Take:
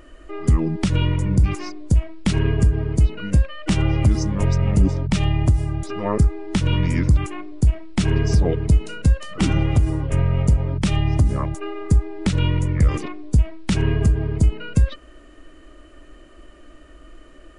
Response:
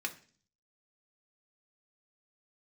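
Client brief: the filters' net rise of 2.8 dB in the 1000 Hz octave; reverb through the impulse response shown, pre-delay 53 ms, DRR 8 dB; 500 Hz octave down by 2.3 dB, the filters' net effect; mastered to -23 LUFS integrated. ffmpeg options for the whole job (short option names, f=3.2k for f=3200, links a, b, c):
-filter_complex "[0:a]equalizer=f=500:t=o:g=-4,equalizer=f=1k:t=o:g=4.5,asplit=2[a][b];[1:a]atrim=start_sample=2205,adelay=53[c];[b][c]afir=irnorm=-1:irlink=0,volume=-10.5dB[d];[a][d]amix=inputs=2:normalize=0,volume=-2.5dB"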